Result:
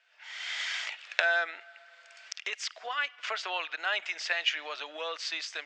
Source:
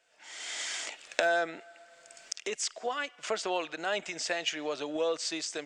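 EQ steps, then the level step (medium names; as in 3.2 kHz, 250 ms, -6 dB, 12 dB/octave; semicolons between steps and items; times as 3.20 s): high-pass 1.4 kHz 12 dB/octave; distance through air 220 m; +8.5 dB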